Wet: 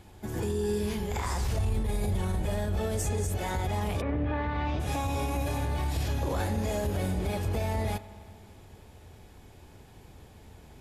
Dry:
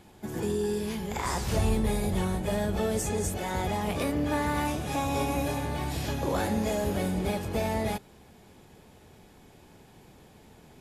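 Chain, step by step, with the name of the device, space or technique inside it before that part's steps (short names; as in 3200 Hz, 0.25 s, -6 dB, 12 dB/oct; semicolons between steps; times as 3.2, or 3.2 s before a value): car stereo with a boomy subwoofer (resonant low shelf 120 Hz +7 dB, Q 1.5; limiter -21.5 dBFS, peak gain reduction 11.5 dB); 4–4.79 LPF 2100 Hz -> 4700 Hz 24 dB/oct; spring tank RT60 2.3 s, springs 53 ms, chirp 45 ms, DRR 15.5 dB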